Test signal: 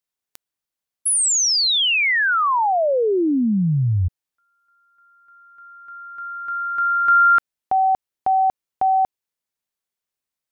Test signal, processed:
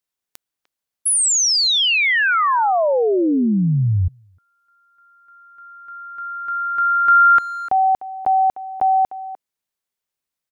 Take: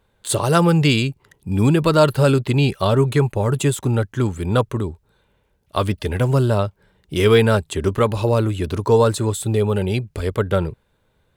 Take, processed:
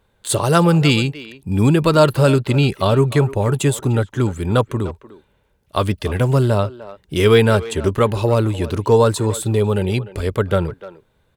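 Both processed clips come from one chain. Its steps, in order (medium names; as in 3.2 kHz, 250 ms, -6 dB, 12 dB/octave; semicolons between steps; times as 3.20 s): speakerphone echo 300 ms, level -15 dB; trim +1.5 dB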